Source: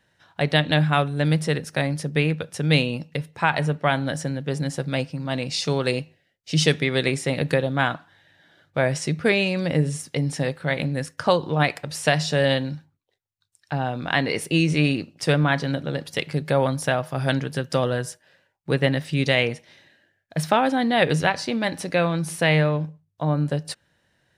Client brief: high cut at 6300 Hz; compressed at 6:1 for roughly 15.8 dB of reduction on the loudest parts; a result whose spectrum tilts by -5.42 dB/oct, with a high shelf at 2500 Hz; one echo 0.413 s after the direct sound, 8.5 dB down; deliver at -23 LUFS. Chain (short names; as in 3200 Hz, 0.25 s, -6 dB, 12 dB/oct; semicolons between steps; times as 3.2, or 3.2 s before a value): LPF 6300 Hz; high shelf 2500 Hz -6.5 dB; compressor 6:1, threshold -33 dBFS; echo 0.413 s -8.5 dB; gain +13.5 dB